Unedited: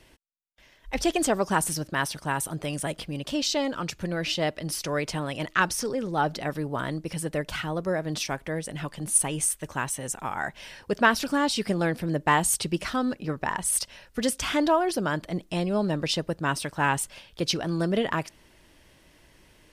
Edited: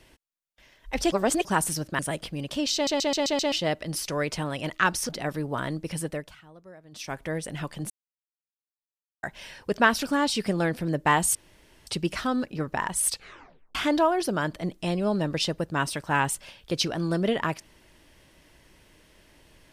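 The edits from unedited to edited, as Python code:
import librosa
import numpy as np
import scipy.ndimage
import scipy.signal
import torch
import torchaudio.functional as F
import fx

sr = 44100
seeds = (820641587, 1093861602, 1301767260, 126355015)

y = fx.edit(x, sr, fx.reverse_span(start_s=1.12, length_s=0.33),
    fx.cut(start_s=1.99, length_s=0.76),
    fx.stutter_over(start_s=3.5, slice_s=0.13, count=6),
    fx.cut(start_s=5.85, length_s=0.45),
    fx.fade_down_up(start_s=7.24, length_s=1.2, db=-20.5, fade_s=0.32),
    fx.silence(start_s=9.11, length_s=1.33),
    fx.insert_room_tone(at_s=12.56, length_s=0.52),
    fx.tape_stop(start_s=13.78, length_s=0.66), tone=tone)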